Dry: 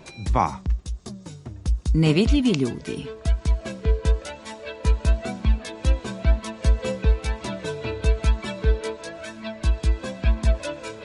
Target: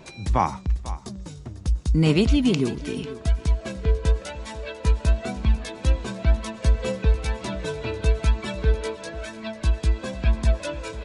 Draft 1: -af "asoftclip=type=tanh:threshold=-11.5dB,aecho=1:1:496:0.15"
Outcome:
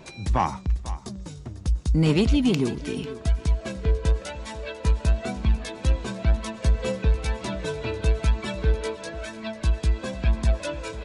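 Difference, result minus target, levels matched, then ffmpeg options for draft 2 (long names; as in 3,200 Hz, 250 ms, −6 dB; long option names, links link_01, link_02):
soft clipping: distortion +15 dB
-af "asoftclip=type=tanh:threshold=-3dB,aecho=1:1:496:0.15"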